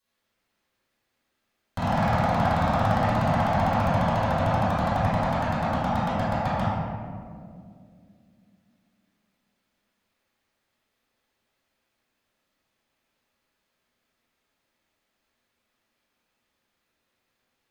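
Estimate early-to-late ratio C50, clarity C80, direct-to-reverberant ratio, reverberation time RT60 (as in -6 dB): -4.5 dB, -1.5 dB, -15.5 dB, 2.3 s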